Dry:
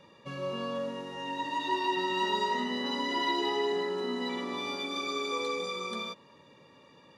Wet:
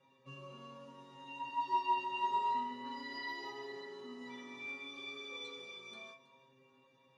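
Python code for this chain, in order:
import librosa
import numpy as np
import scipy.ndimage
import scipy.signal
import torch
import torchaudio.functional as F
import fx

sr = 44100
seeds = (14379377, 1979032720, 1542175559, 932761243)

y = scipy.signal.sosfilt(scipy.signal.butter(2, 42.0, 'highpass', fs=sr, output='sos'), x)
y = fx.high_shelf(y, sr, hz=8300.0, db=-9.0)
y = fx.stiff_resonator(y, sr, f0_hz=130.0, decay_s=0.47, stiffness=0.002)
y = y + 10.0 ** (-18.5 / 20.0) * np.pad(y, (int(322 * sr / 1000.0), 0))[:len(y)]
y = fx.upward_expand(y, sr, threshold_db=-40.0, expansion=1.5)
y = y * librosa.db_to_amplitude(5.0)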